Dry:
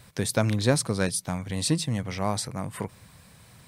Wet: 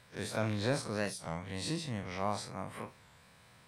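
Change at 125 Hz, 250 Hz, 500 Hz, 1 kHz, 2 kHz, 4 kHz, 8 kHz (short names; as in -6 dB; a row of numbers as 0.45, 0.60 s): -11.5, -10.0, -8.0, -5.5, -6.5, -9.5, -14.5 dB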